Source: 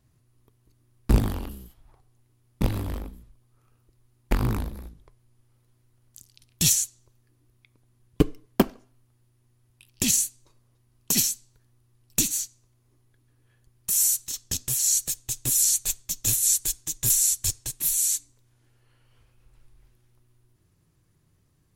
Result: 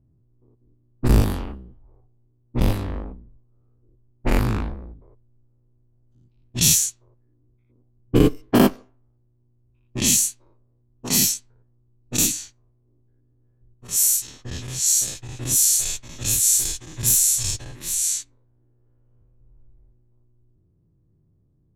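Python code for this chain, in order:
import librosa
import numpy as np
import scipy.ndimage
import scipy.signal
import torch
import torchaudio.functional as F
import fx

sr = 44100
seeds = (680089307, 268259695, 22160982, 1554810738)

y = fx.spec_dilate(x, sr, span_ms=120)
y = fx.env_lowpass(y, sr, base_hz=430.0, full_db=-13.5)
y = F.gain(torch.from_numpy(y), -1.0).numpy()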